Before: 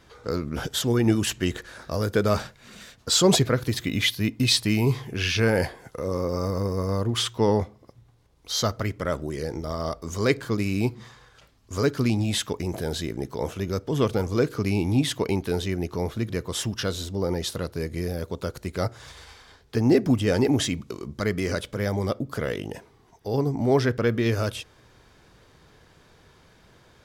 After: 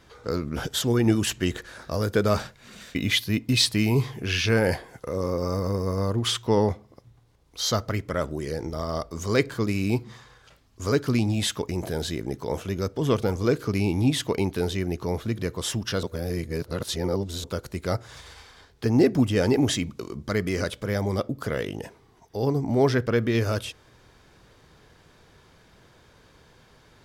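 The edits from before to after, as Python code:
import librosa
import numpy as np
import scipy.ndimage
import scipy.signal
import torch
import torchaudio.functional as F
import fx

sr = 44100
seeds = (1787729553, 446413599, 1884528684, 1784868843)

y = fx.edit(x, sr, fx.cut(start_s=2.95, length_s=0.91),
    fx.reverse_span(start_s=16.94, length_s=1.41), tone=tone)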